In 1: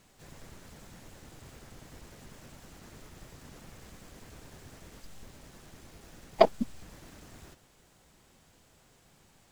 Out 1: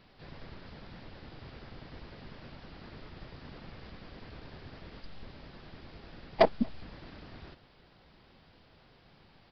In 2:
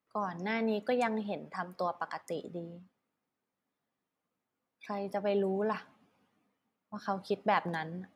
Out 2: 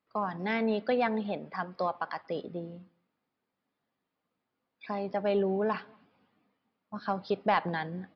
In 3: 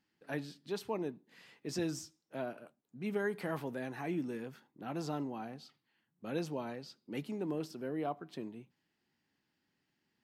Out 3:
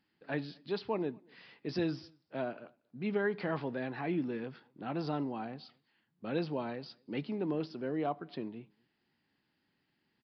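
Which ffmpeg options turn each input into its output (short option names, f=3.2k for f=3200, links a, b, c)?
-filter_complex "[0:a]aresample=11025,asoftclip=type=tanh:threshold=-16dB,aresample=44100,asplit=2[a][b];[b]adelay=233.2,volume=-30dB,highshelf=f=4k:g=-5.25[c];[a][c]amix=inputs=2:normalize=0,volume=3dB"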